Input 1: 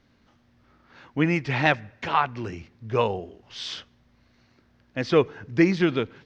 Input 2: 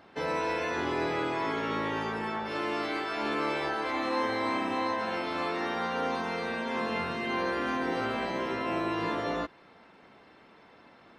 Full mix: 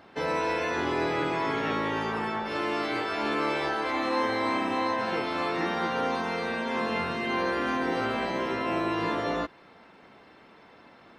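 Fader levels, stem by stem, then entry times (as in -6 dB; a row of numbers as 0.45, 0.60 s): -18.5, +2.5 dB; 0.00, 0.00 s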